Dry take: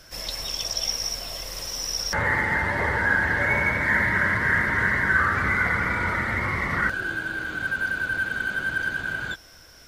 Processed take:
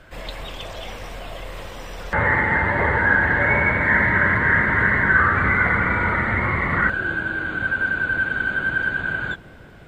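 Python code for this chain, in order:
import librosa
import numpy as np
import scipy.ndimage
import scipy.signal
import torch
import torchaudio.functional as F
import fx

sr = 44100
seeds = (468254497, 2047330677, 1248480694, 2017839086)

p1 = scipy.signal.lfilter(np.full(8, 1.0 / 8), 1.0, x)
p2 = p1 + fx.echo_bbd(p1, sr, ms=361, stages=2048, feedback_pct=78, wet_db=-17.0, dry=0)
y = p2 * librosa.db_to_amplitude(5.5)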